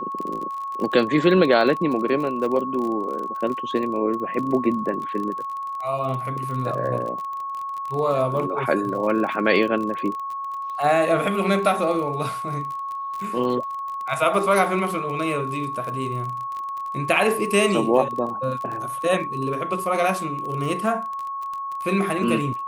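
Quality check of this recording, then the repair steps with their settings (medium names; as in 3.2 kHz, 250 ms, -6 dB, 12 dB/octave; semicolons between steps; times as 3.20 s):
crackle 31 per s -29 dBFS
whine 1.1 kHz -27 dBFS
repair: de-click; band-stop 1.1 kHz, Q 30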